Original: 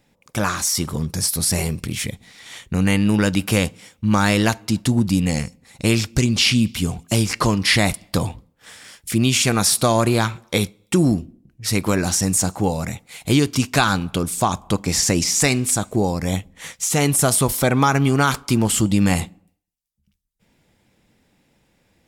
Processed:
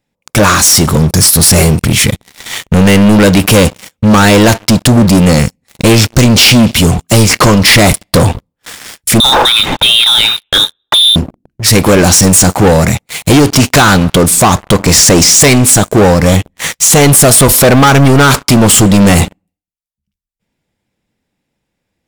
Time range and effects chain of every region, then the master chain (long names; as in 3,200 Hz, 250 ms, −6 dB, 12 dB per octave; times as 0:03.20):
0:09.20–0:11.16: voice inversion scrambler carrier 3,800 Hz + parametric band 860 Hz +13.5 dB 0.25 octaves + downward compressor 2 to 1, threshold −23 dBFS
whole clip: dynamic equaliser 530 Hz, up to +4 dB, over −32 dBFS, Q 2.3; leveller curve on the samples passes 5; level +1 dB